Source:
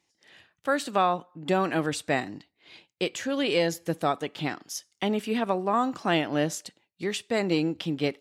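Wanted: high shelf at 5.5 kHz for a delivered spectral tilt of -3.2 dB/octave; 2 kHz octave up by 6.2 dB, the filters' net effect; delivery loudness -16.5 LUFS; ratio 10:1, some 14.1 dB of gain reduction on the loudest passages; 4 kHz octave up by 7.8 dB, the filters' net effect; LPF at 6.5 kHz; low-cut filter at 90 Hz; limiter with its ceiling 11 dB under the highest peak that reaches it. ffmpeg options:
-af "highpass=90,lowpass=6500,equalizer=f=2000:t=o:g=5,equalizer=f=4000:t=o:g=5.5,highshelf=f=5500:g=9,acompressor=threshold=0.0251:ratio=10,volume=15,alimiter=limit=0.596:level=0:latency=1"

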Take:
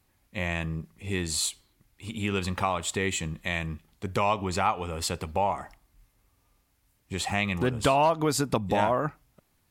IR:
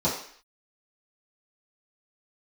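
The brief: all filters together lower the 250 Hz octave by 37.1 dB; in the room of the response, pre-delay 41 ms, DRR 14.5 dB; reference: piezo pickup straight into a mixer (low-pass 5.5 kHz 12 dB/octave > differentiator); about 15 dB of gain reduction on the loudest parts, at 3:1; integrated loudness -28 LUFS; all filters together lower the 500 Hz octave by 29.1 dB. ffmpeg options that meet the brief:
-filter_complex "[0:a]equalizer=f=250:t=o:g=-8.5,equalizer=f=500:t=o:g=-8.5,acompressor=threshold=0.00631:ratio=3,asplit=2[s0][s1];[1:a]atrim=start_sample=2205,adelay=41[s2];[s1][s2]afir=irnorm=-1:irlink=0,volume=0.0447[s3];[s0][s3]amix=inputs=2:normalize=0,lowpass=5500,aderivative,volume=20"

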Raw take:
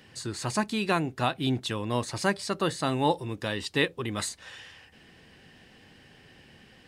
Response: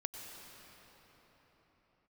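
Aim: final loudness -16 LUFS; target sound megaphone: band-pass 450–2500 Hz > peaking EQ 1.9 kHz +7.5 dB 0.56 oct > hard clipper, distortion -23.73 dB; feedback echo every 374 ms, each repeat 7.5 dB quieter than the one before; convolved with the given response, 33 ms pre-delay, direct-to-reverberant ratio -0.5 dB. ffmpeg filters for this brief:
-filter_complex "[0:a]aecho=1:1:374|748|1122|1496|1870:0.422|0.177|0.0744|0.0312|0.0131,asplit=2[s0][s1];[1:a]atrim=start_sample=2205,adelay=33[s2];[s1][s2]afir=irnorm=-1:irlink=0,volume=1.12[s3];[s0][s3]amix=inputs=2:normalize=0,highpass=450,lowpass=2500,equalizer=f=1900:t=o:w=0.56:g=7.5,asoftclip=type=hard:threshold=0.188,volume=3.76"

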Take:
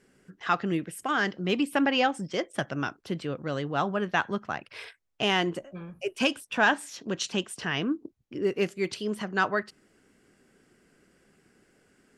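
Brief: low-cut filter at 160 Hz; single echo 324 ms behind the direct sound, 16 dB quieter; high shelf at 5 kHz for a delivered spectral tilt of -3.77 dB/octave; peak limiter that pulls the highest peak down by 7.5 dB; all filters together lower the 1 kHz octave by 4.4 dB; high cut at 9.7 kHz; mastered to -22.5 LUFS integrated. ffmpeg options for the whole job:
-af "highpass=160,lowpass=9700,equalizer=f=1000:t=o:g=-6.5,highshelf=f=5000:g=7,alimiter=limit=0.133:level=0:latency=1,aecho=1:1:324:0.158,volume=2.99"

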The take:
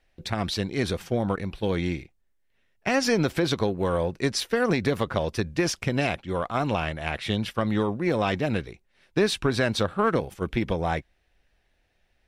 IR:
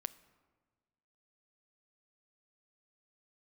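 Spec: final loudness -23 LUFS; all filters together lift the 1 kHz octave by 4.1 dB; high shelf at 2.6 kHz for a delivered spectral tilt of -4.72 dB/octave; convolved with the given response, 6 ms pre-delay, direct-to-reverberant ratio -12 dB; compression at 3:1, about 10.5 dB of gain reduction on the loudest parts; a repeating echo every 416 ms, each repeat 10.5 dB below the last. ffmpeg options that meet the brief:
-filter_complex "[0:a]equalizer=f=1000:t=o:g=6,highshelf=f=2600:g=-3.5,acompressor=threshold=0.0251:ratio=3,aecho=1:1:416|832|1248:0.299|0.0896|0.0269,asplit=2[s0][s1];[1:a]atrim=start_sample=2205,adelay=6[s2];[s1][s2]afir=irnorm=-1:irlink=0,volume=5.31[s3];[s0][s3]amix=inputs=2:normalize=0,volume=0.891"

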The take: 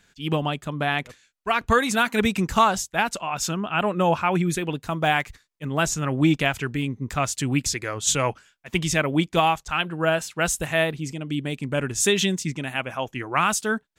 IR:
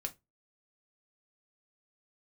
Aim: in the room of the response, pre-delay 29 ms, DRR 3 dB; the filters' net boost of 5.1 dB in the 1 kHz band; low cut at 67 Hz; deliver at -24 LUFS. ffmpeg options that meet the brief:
-filter_complex "[0:a]highpass=67,equalizer=f=1000:t=o:g=6.5,asplit=2[s0][s1];[1:a]atrim=start_sample=2205,adelay=29[s2];[s1][s2]afir=irnorm=-1:irlink=0,volume=0.794[s3];[s0][s3]amix=inputs=2:normalize=0,volume=0.596"

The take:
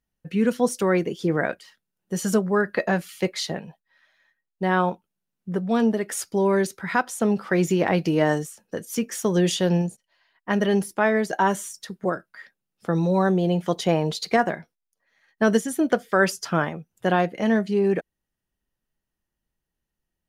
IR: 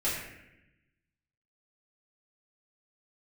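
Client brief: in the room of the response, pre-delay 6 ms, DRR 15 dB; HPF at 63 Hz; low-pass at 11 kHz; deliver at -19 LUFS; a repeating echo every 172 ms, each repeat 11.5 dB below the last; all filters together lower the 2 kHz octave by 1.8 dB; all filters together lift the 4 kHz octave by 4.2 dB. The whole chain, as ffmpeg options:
-filter_complex "[0:a]highpass=63,lowpass=11000,equalizer=f=2000:t=o:g=-3.5,equalizer=f=4000:t=o:g=6.5,aecho=1:1:172|344|516:0.266|0.0718|0.0194,asplit=2[s0][s1];[1:a]atrim=start_sample=2205,adelay=6[s2];[s1][s2]afir=irnorm=-1:irlink=0,volume=0.0668[s3];[s0][s3]amix=inputs=2:normalize=0,volume=1.68"

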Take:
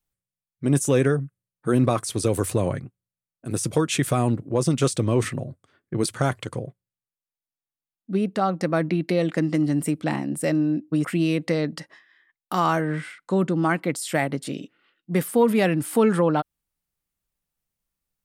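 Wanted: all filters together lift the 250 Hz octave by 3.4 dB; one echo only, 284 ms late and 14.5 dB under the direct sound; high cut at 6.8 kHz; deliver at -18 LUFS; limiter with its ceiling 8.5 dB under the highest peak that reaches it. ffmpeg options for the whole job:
-af "lowpass=6800,equalizer=f=250:t=o:g=4.5,alimiter=limit=0.188:level=0:latency=1,aecho=1:1:284:0.188,volume=2.37"

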